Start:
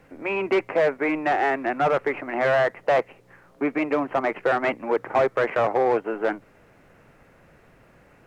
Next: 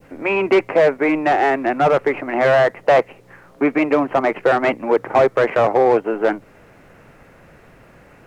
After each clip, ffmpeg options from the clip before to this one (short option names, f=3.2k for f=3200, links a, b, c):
-af "adynamicequalizer=threshold=0.0141:dfrequency=1600:dqfactor=0.74:tfrequency=1600:tqfactor=0.74:attack=5:release=100:ratio=0.375:range=2:mode=cutabove:tftype=bell,volume=7.5dB"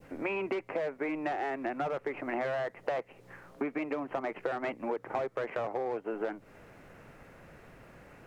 -af "acompressor=threshold=-24dB:ratio=10,volume=-6.5dB"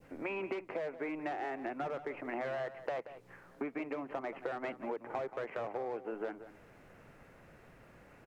-filter_complex "[0:a]asplit=2[a][b];[b]adelay=180.8,volume=-13dB,highshelf=f=4k:g=-4.07[c];[a][c]amix=inputs=2:normalize=0,volume=-5dB"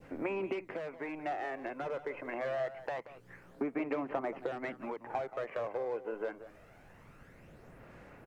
-af "aphaser=in_gain=1:out_gain=1:delay=2:decay=0.42:speed=0.25:type=sinusoidal"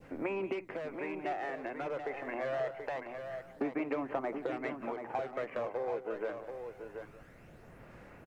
-af "aecho=1:1:732:0.422"